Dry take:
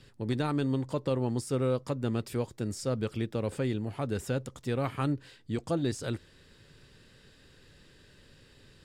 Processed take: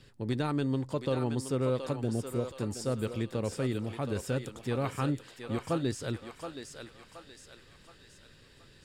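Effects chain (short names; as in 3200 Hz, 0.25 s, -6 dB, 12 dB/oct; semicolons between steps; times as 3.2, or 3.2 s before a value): spectral repair 2.06–2.44, 800–6900 Hz; thinning echo 0.723 s, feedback 50%, high-pass 640 Hz, level -5 dB; gain -1 dB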